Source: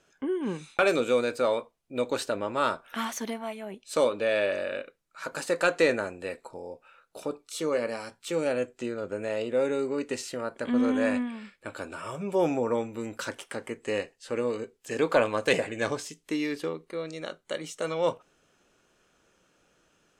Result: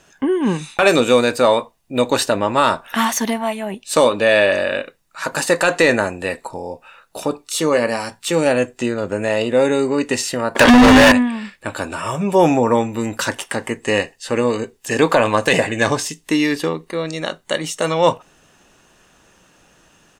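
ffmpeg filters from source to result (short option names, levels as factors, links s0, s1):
-filter_complex "[0:a]asettb=1/sr,asplit=3[s0][s1][s2];[s0]atrim=end=10.554[s3];[s1]atrim=start=10.55:end=11.12,asetpts=PTS-STARTPTS,afade=t=in:d=0.004:c=qsin,afade=t=out:st=0.566:d=0.004:c=qsin,asplit=2[s4][s5];[s5]highpass=f=720:p=1,volume=39.8,asoftclip=type=tanh:threshold=0.211[s6];[s4][s6]amix=inputs=2:normalize=0,lowpass=f=4300:p=1,volume=0.501[s7];[s2]atrim=start=11.116[s8];[s3][s7]acrossfade=d=0.004:c1=hsin:c2=qsin[s9];[s9][s8]acrossfade=d=0.004:c1=qsin:c2=hsin,highshelf=f=9200:g=3.5,aecho=1:1:1.1:0.34,alimiter=level_in=5.31:limit=0.891:release=50:level=0:latency=1,volume=0.891"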